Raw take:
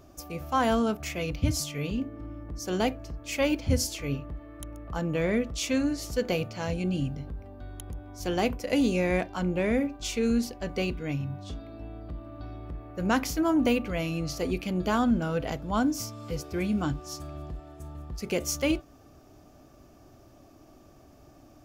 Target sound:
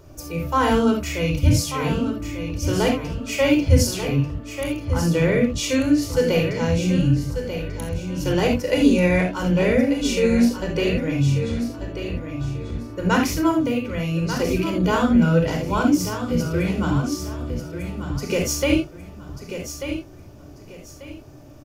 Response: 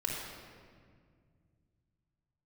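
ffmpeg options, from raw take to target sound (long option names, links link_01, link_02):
-filter_complex "[0:a]asettb=1/sr,asplit=3[link_01][link_02][link_03];[link_01]atrim=end=13.544[link_04];[link_02]atrim=start=13.54:end=14.4,asetpts=PTS-STARTPTS,afade=type=in:duration=0.004:curve=qsin,afade=type=out:start_time=0.856:duration=0.004:curve=qsin,acompressor=threshold=-32dB:ratio=2.5[link_05];[link_03]atrim=start=14.396[link_06];[link_04][link_05]acrossfade=duration=0.004:curve1=hsin:curve2=qsin[link_07];[link_07][link_06]acrossfade=duration=0.004:curve1=qsin:curve2=hsin,aecho=1:1:1190|2380|3570:0.355|0.0993|0.0278[link_08];[1:a]atrim=start_sample=2205,atrim=end_sample=3969[link_09];[link_08][link_09]afir=irnorm=-1:irlink=0,volume=4.5dB"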